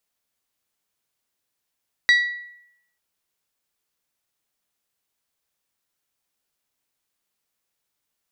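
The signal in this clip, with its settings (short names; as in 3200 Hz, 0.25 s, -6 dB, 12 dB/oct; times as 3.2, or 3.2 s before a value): glass hit bell, lowest mode 1940 Hz, decay 0.77 s, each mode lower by 8 dB, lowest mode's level -10.5 dB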